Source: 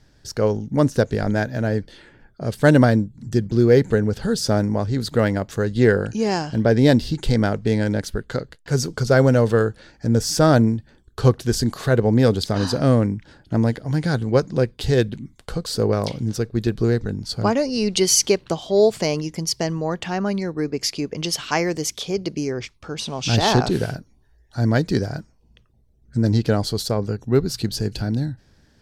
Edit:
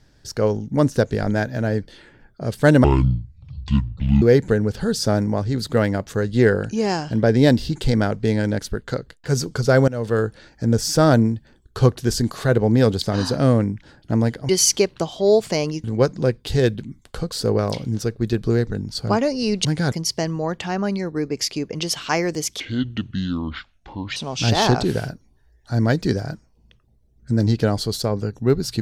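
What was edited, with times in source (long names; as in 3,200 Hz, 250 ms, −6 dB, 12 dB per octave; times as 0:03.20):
0:02.84–0:03.64: play speed 58%
0:09.30–0:09.68: fade in, from −19.5 dB
0:13.91–0:14.18: swap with 0:17.99–0:19.34
0:22.02–0:23.02: play speed 64%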